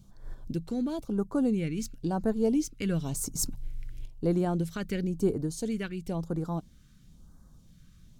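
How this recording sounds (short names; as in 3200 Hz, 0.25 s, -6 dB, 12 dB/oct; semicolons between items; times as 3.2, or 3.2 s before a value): phasing stages 2, 0.98 Hz, lowest notch 770–2500 Hz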